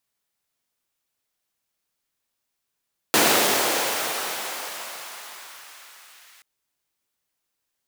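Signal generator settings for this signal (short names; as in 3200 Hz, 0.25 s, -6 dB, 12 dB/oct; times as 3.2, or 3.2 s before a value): swept filtered noise pink, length 3.28 s highpass, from 320 Hz, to 1600 Hz, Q 0.95, gain ramp -34 dB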